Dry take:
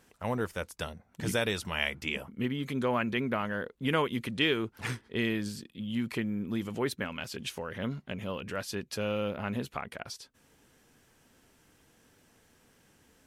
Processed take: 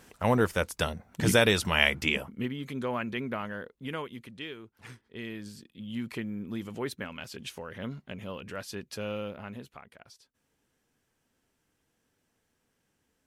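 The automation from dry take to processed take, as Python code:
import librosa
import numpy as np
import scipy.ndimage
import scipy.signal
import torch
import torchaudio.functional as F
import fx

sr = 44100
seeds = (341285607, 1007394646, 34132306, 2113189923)

y = fx.gain(x, sr, db=fx.line((2.04, 7.5), (2.54, -3.0), (3.44, -3.0), (4.64, -15.0), (5.94, -3.0), (9.15, -3.0), (9.85, -12.5)))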